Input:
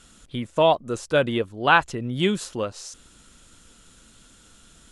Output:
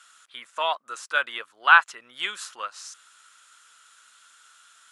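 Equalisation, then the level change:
high-pass with resonance 1,300 Hz, resonance Q 2.4
−2.5 dB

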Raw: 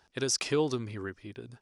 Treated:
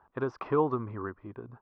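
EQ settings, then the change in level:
low-pass with resonance 1,100 Hz, resonance Q 4.2
high-frequency loss of the air 120 metres
0.0 dB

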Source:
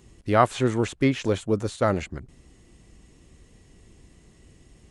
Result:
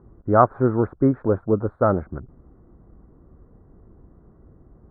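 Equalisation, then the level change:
elliptic low-pass filter 1,400 Hz, stop band 50 dB
+4.0 dB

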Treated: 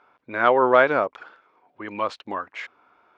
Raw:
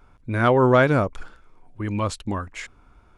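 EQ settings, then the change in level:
high-pass filter 520 Hz 12 dB per octave
high-frequency loss of the air 240 metres
+4.0 dB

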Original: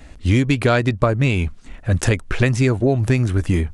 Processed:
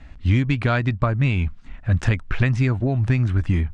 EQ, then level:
high-frequency loss of the air 80 metres
parametric band 440 Hz −10.5 dB 1.3 octaves
high-shelf EQ 4,400 Hz −11 dB
0.0 dB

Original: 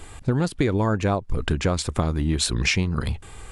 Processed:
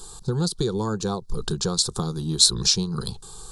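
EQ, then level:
dynamic equaliser 980 Hz, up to −4 dB, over −41 dBFS, Q 3.1
high shelf with overshoot 3,300 Hz +7 dB, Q 3
phaser with its sweep stopped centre 410 Hz, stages 8
0.0 dB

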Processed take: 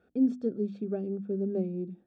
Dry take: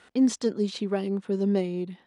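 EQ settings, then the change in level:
moving average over 44 samples
mains-hum notches 50/100/150/200/250/300/350 Hz
−2.0 dB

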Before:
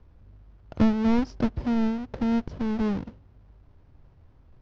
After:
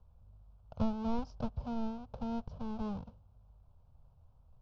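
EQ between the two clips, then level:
high-frequency loss of the air 84 metres
phaser with its sweep stopped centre 790 Hz, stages 4
−6.5 dB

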